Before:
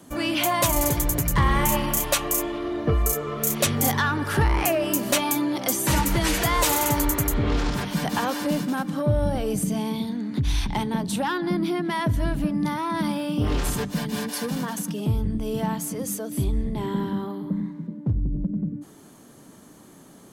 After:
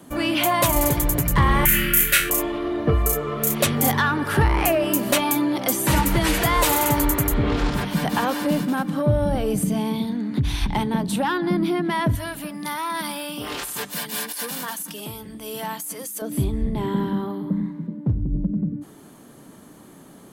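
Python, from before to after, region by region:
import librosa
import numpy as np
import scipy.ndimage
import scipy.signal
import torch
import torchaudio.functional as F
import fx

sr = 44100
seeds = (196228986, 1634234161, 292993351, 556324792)

y = fx.chain(x, sr, fx.curve_eq(hz=(170.0, 240.0, 340.0, 1000.0, 1400.0, 2200.0, 4100.0, 6100.0, 13000.0), db=(0, -14, -5, -28, 7, 7, -1, -2, 5)),
    fx.room_flutter(wall_m=3.9, rt60_s=0.33), at=(1.65, 2.3))
y = fx.chain(y, sr, fx.highpass(hz=1200.0, slope=6),
    fx.high_shelf(hz=6600.0, db=10.5),
    fx.over_compress(threshold_db=-30.0, ratio=-1.0), at=(12.15, 16.22))
y = fx.peak_eq(y, sr, hz=6100.0, db=-5.5, octaves=0.89)
y = fx.hum_notches(y, sr, base_hz=50, count=2)
y = y * librosa.db_to_amplitude(3.0)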